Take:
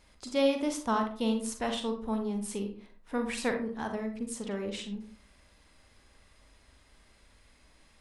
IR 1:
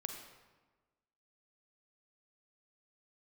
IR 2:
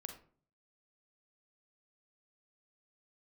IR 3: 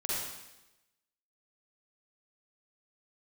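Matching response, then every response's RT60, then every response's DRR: 2; 1.3 s, 0.45 s, 0.95 s; 4.0 dB, 4.5 dB, -7.5 dB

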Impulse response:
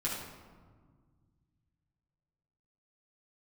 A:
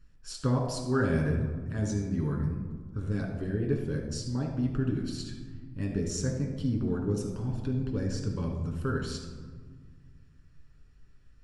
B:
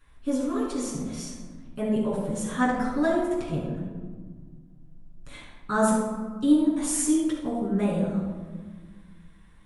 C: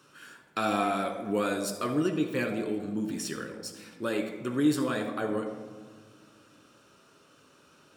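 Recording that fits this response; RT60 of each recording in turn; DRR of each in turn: B; 1.7 s, 1.6 s, 1.7 s; 0.0 dB, -6.5 dB, 4.0 dB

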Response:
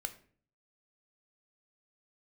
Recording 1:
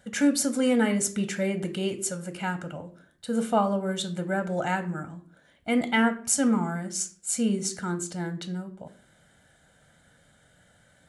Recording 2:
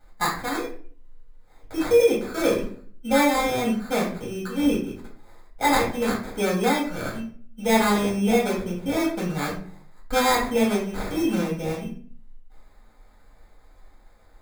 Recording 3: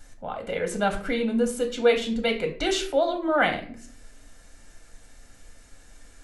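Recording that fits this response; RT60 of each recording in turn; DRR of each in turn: 1; 0.50 s, 0.50 s, 0.50 s; 8.0 dB, -4.5 dB, 3.5 dB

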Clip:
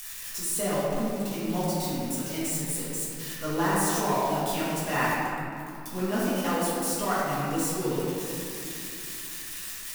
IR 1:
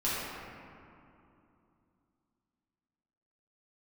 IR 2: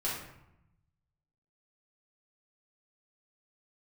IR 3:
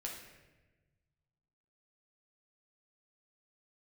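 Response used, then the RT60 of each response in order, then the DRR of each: 1; 2.8 s, 0.85 s, 1.2 s; -10.5 dB, -8.0 dB, -2.0 dB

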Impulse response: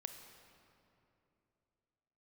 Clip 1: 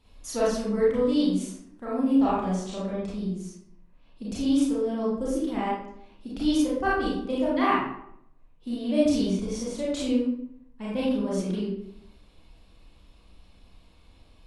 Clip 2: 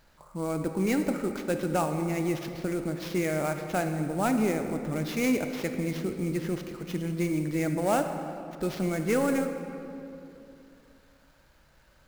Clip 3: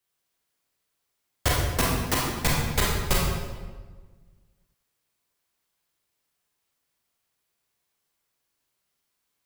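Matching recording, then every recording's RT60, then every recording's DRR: 2; 0.70 s, 2.9 s, 1.4 s; -7.5 dB, 6.0 dB, -4.5 dB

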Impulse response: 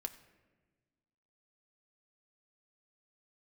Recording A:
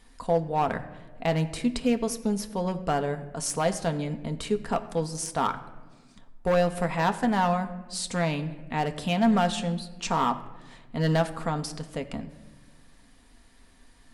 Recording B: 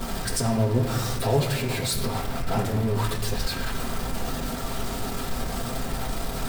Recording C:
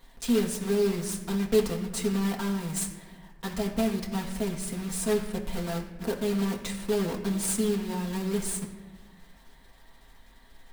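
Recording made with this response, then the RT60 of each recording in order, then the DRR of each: A; 1.3 s, 1.3 s, 1.3 s; 6.0 dB, -7.5 dB, -2.0 dB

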